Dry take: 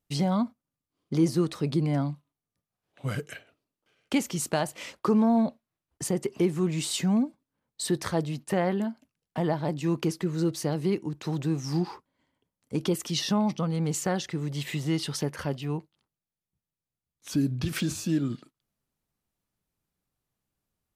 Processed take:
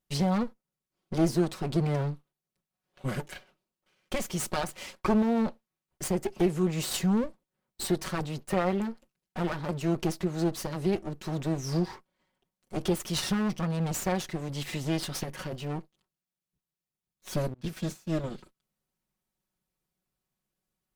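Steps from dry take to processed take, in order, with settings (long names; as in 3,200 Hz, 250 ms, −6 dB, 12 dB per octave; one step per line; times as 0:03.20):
lower of the sound and its delayed copy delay 5.4 ms
0:17.54–0:18.24: downward expander −24 dBFS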